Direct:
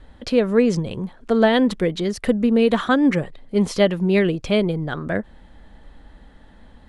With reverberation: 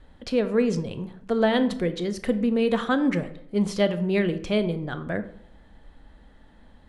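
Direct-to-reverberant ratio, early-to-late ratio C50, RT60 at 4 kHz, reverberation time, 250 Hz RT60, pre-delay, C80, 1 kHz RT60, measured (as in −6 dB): 10.5 dB, 13.5 dB, 0.40 s, 0.70 s, 0.75 s, 20 ms, 16.5 dB, 0.70 s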